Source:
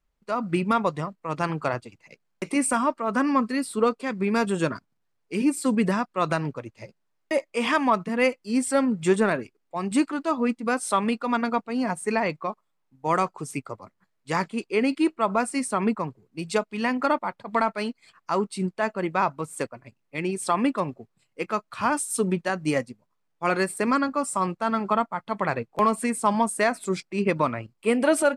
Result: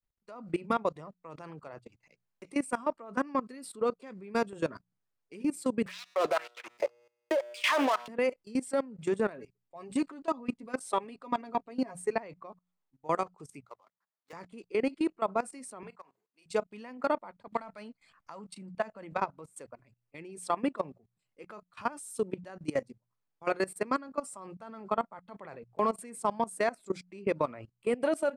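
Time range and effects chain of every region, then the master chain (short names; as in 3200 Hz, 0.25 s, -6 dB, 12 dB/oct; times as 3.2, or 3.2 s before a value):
5.86–8.08 sample leveller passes 5 + LFO high-pass sine 1.9 Hz 390–3700 Hz + resonator 120 Hz, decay 1 s, mix 50%
9.33–12.13 notch 1400 Hz + comb 7.3 ms, depth 56%
13.62–14.33 median filter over 15 samples + HPF 680 Hz
15.83–16.46 HPF 720 Hz + doubler 31 ms -13 dB + compressor 16:1, threshold -34 dBFS
17.51–19.18 bell 390 Hz -14 dB 0.24 oct + three-band squash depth 100%
whole clip: notches 60/120/180 Hz; dynamic EQ 500 Hz, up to +6 dB, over -37 dBFS, Q 1.1; level quantiser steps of 19 dB; gain -7 dB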